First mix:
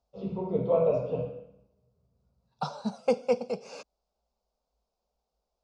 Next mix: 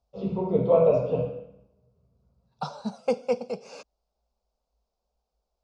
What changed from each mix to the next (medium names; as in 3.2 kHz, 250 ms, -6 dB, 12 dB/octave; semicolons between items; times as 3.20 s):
first voice +5.0 dB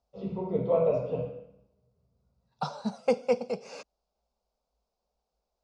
first voice -5.5 dB; master: add peaking EQ 1.9 kHz +8 dB 0.26 oct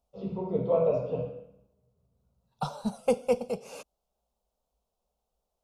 second voice: remove cabinet simulation 150–6700 Hz, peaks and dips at 1.7 kHz +4 dB, 3.1 kHz -5 dB, 4.8 kHz +6 dB; master: add peaking EQ 2 kHz -5 dB 0.49 oct